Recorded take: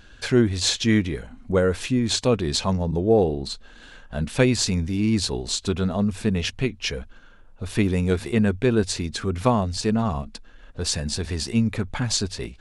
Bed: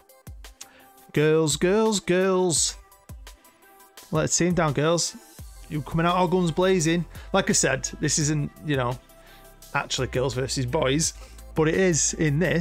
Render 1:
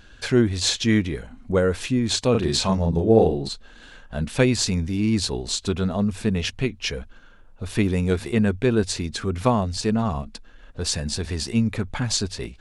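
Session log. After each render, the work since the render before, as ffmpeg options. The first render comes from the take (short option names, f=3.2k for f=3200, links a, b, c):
-filter_complex "[0:a]asettb=1/sr,asplit=3[a][b][c];[a]atrim=end=2.314[d];[b]atrim=start=2.31:end=3.49,asetpts=PTS-STARTPTS,afade=t=in:d=0.004:c=qsin,afade=t=out:st=1.176:d=0.004:c=qsin,asplit=2[e][f];[f]adelay=36,volume=-2.5dB[g];[e][g]amix=inputs=2:normalize=0,atrim=end_sample=52038[h];[c]atrim=start=3.486[i];[d][h]acrossfade=d=0.004:c1=hsin:c2=qsin[j];[j][i]acrossfade=d=0.004:c1=qsin:c2=hsin"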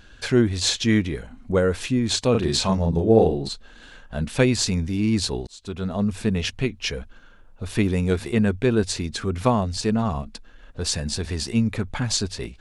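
-filter_complex "[0:a]asplit=2[a][b];[a]atrim=end=5.47,asetpts=PTS-STARTPTS,afade=t=out:st=5.466:d=0.004:c=hsin[c];[b]atrim=start=5.47,asetpts=PTS-STARTPTS,afade=t=in:d=0.59[d];[c][d]concat=n=2:v=0:a=1"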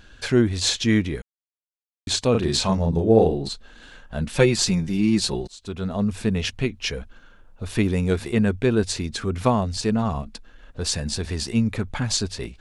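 -filter_complex "[0:a]asettb=1/sr,asplit=3[a][b][c];[a]atrim=end=4.334[d];[b]atrim=start=4.33:end=5.55,asetpts=PTS-STARTPTS,afade=t=in:d=0.004:c=qsin,afade=t=out:st=1.216:d=0.004:c=qsin,aecho=1:1:5.6:0.65,atrim=end_sample=53802[e];[c]atrim=start=5.546[f];[d][e]acrossfade=d=0.004:c1=hsin:c2=qsin[g];[g][f]acrossfade=d=0.004:c1=qsin:c2=hsin,asplit=3[h][i][j];[h]atrim=end=1.22,asetpts=PTS-STARTPTS,afade=t=out:st=1.216:d=0.004:c=hsin[k];[i]atrim=start=1.22:end=2.07,asetpts=PTS-STARTPTS,volume=0[l];[j]atrim=start=2.07,asetpts=PTS-STARTPTS,afade=t=in:d=0.004:c=hsin[m];[k][l][m]concat=n=3:v=0:a=1"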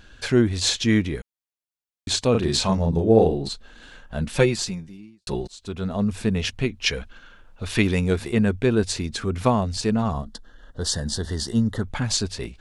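-filter_complex "[0:a]asettb=1/sr,asplit=3[a][b][c];[a]atrim=end=6.864[d];[b]atrim=start=6.86:end=8,asetpts=PTS-STARTPTS,afade=t=in:d=0.004:c=qsin,afade=t=out:st=1.136:d=0.004:c=qsin,equalizer=f=3k:t=o:w=2.8:g=7[e];[c]atrim=start=7.996[f];[d][e]acrossfade=d=0.004:c1=hsin:c2=qsin[g];[g][f]acrossfade=d=0.004:c1=qsin:c2=hsin,asplit=3[h][i][j];[h]afade=t=out:st=10.1:d=0.02[k];[i]asuperstop=centerf=2400:order=8:qfactor=2.6,afade=t=in:st=10.1:d=0.02,afade=t=out:st=11.82:d=0.02[l];[j]afade=t=in:st=11.82:d=0.02[m];[k][l][m]amix=inputs=3:normalize=0,asplit=2[n][o];[n]atrim=end=5.27,asetpts=PTS-STARTPTS,afade=t=out:st=4.37:d=0.9:c=qua[p];[o]atrim=start=5.27,asetpts=PTS-STARTPTS,afade=t=in:d=0.004:c=hsin[q];[p][q]concat=n=2:v=0:a=1"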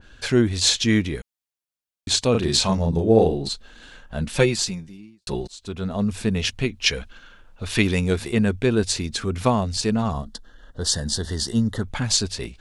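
-af "adynamicequalizer=threshold=0.0126:dfrequency=2400:dqfactor=0.7:tfrequency=2400:tqfactor=0.7:attack=5:release=100:ratio=0.375:range=2:mode=boostabove:tftype=highshelf"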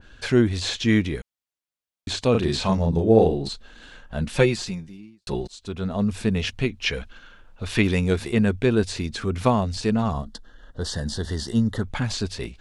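-filter_complex "[0:a]acrossover=split=3000[a][b];[b]acompressor=threshold=-29dB:ratio=4:attack=1:release=60[c];[a][c]amix=inputs=2:normalize=0,highshelf=f=6.3k:g=-5"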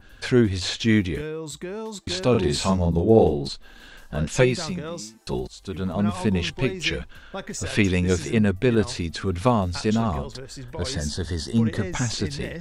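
-filter_complex "[1:a]volume=-12dB[a];[0:a][a]amix=inputs=2:normalize=0"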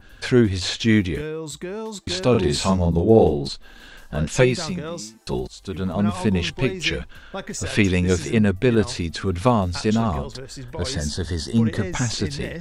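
-af "volume=2dB,alimiter=limit=-3dB:level=0:latency=1"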